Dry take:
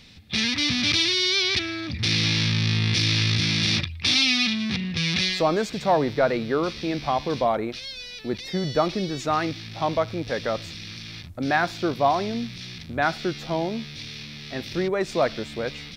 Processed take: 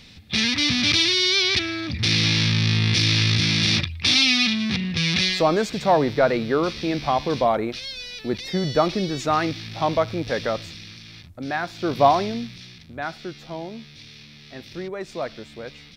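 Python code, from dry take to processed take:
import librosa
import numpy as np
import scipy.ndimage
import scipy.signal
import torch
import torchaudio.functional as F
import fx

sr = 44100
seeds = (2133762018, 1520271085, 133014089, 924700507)

y = fx.gain(x, sr, db=fx.line((10.42, 2.5), (11.0, -4.5), (11.73, -4.5), (12.02, 5.5), (12.79, -7.0)))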